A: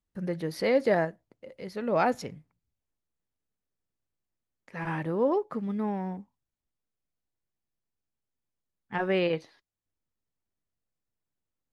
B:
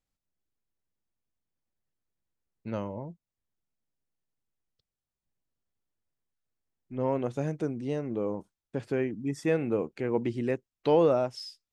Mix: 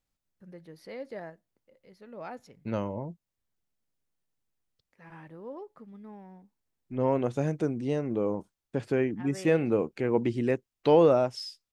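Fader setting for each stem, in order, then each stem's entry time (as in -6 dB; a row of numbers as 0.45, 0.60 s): -16.0, +2.5 dB; 0.25, 0.00 s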